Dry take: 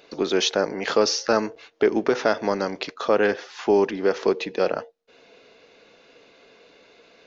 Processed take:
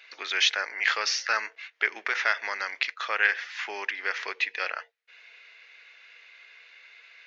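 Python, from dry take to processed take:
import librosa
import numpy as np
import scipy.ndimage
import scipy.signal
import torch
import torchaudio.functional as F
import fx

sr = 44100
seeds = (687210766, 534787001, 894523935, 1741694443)

y = fx.highpass_res(x, sr, hz=2000.0, q=3.0)
y = fx.high_shelf(y, sr, hz=2800.0, db=-10.5)
y = F.gain(torch.from_numpy(y), 4.0).numpy()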